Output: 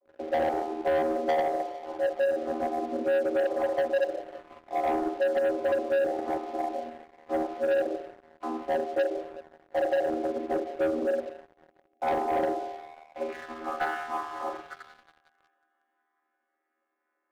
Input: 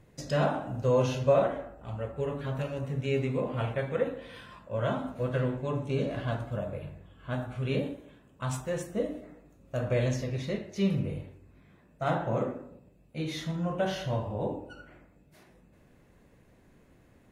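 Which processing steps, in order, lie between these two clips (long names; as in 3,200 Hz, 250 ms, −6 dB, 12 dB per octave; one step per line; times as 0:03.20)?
channel vocoder with a chord as carrier bare fifth, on D#3
dynamic equaliser 480 Hz, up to +4 dB, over −38 dBFS, Q 0.95
band-pass filter sweep 450 Hz → 1,500 Hz, 0:12.45–0:13.53
downward compressor 4 to 1, threshold −35 dBFS, peak gain reduction 14 dB
band-pass filter 270–2,200 Hz
frequency shifter +85 Hz
delay with a high-pass on its return 181 ms, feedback 78%, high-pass 1,700 Hz, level −9 dB
on a send at −17 dB: convolution reverb RT60 0.45 s, pre-delay 100 ms
on the sum: leveller curve on the samples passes 3
level +6.5 dB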